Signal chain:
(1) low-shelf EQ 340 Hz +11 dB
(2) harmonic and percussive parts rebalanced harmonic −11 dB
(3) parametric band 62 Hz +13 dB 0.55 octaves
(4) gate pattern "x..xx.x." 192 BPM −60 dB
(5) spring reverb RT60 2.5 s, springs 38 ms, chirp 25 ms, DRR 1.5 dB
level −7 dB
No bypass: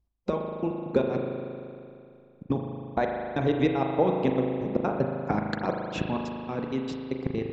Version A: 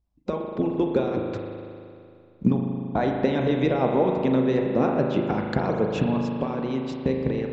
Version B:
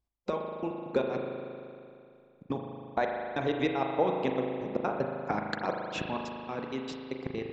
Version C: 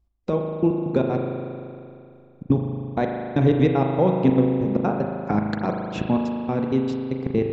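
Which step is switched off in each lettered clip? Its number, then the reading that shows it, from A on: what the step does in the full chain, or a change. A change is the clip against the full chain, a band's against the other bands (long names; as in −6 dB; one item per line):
4, 250 Hz band +2.5 dB
1, 125 Hz band −7.5 dB
2, 125 Hz band +5.5 dB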